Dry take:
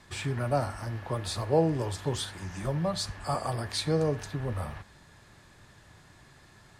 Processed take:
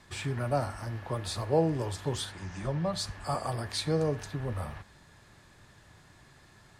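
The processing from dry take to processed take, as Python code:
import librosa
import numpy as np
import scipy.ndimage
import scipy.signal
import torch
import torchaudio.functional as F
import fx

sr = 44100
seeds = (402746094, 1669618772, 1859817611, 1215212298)

y = fx.lowpass(x, sr, hz=7200.0, slope=12, at=(2.32, 2.93))
y = F.gain(torch.from_numpy(y), -1.5).numpy()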